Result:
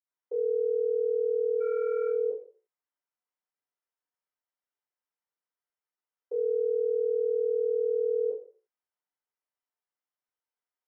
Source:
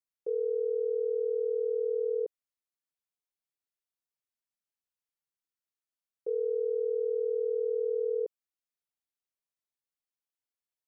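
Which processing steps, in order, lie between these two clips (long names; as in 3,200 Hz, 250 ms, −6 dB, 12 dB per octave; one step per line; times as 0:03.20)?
0:01.55–0:02.04: running median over 41 samples
convolution reverb RT60 0.50 s, pre-delay 47 ms, DRR −60 dB
level +1.5 dB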